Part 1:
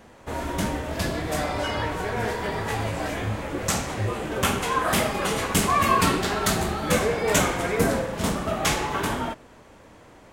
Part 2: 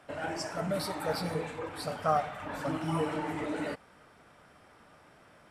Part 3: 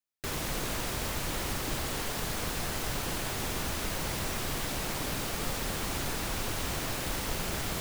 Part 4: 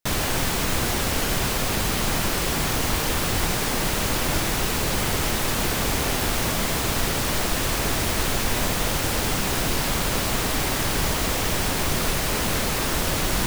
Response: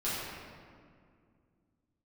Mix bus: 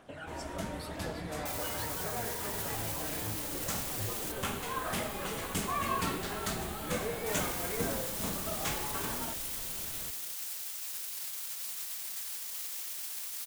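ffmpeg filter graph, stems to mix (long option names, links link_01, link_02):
-filter_complex "[0:a]volume=-12.5dB[link_01];[1:a]highshelf=frequency=9400:gain=-10.5,aphaser=in_gain=1:out_gain=1:delay=1.7:decay=0.5:speed=0.91:type=triangular,volume=-5.5dB[link_02];[2:a]adelay=2300,volume=-7dB[link_03];[3:a]alimiter=limit=-20dB:level=0:latency=1,aderivative,adelay=1400,volume=-7dB,asplit=3[link_04][link_05][link_06];[link_04]atrim=end=4.32,asetpts=PTS-STARTPTS,afade=type=out:start_time=4.316:duration=0.004:curve=hsin[link_07];[link_05]atrim=start=4.32:end=7.26,asetpts=PTS-STARTPTS,volume=0[link_08];[link_06]atrim=start=7.26,asetpts=PTS-STARTPTS,afade=type=in:duration=0.004:curve=hsin[link_09];[link_07][link_08][link_09]concat=n=3:v=0:a=1[link_10];[link_02][link_03]amix=inputs=2:normalize=0,aexciter=amount=1.5:drive=4.8:freq=2900,acompressor=threshold=-41dB:ratio=6,volume=0dB[link_11];[link_01][link_10][link_11]amix=inputs=3:normalize=0"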